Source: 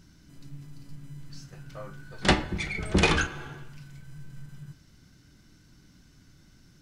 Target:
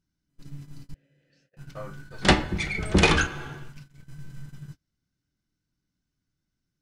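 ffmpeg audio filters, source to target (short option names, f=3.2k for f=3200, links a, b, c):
-filter_complex "[0:a]agate=range=-28dB:threshold=-43dB:ratio=16:detection=peak,asettb=1/sr,asplit=3[a][b][c];[a]atrim=end=0.944[d];[b]atrim=start=0.94:end=1.57,asetpts=PTS-STARTPTS,afade=t=in:d=0.004:c=qsin,afade=t=out:st=0.626:d=0.004:c=qsin,asplit=3[e][f][g];[e]bandpass=f=530:t=q:w=8,volume=0dB[h];[f]bandpass=f=1.84k:t=q:w=8,volume=-6dB[i];[g]bandpass=f=2.48k:t=q:w=8,volume=-9dB[j];[h][i][j]amix=inputs=3:normalize=0[k];[c]atrim=start=1.566[l];[d][k]acrossfade=d=0.004:c1=hsin:c2=qsin[m];[m][l]acrossfade=d=0.004:c1=qsin:c2=hsin,volume=3dB"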